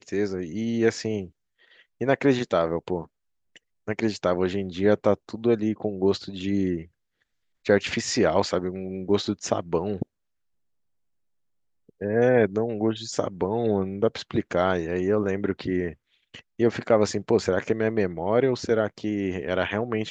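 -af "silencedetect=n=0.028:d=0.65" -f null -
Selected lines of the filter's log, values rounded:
silence_start: 1.24
silence_end: 2.01 | silence_duration: 0.76
silence_start: 3.03
silence_end: 3.88 | silence_duration: 0.85
silence_start: 6.82
silence_end: 7.66 | silence_duration: 0.84
silence_start: 10.03
silence_end: 12.02 | silence_duration: 1.99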